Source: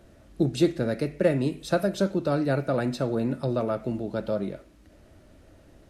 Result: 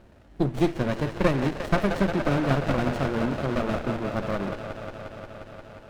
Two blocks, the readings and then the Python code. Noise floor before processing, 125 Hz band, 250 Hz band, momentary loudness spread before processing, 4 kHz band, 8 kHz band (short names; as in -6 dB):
-55 dBFS, +2.0 dB, +0.5 dB, 6 LU, +1.0 dB, -2.5 dB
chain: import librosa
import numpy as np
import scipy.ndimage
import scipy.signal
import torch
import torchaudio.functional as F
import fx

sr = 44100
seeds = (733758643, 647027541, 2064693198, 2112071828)

y = fx.band_shelf(x, sr, hz=1600.0, db=8.5, octaves=2.5)
y = fx.echo_wet_bandpass(y, sr, ms=177, feedback_pct=83, hz=1400.0, wet_db=-3.5)
y = fx.running_max(y, sr, window=33)